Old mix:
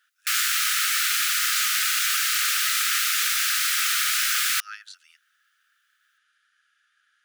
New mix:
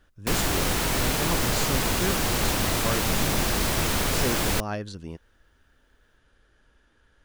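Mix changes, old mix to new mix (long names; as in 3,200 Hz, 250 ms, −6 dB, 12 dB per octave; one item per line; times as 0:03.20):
background −5.5 dB
master: remove linear-phase brick-wall high-pass 1,200 Hz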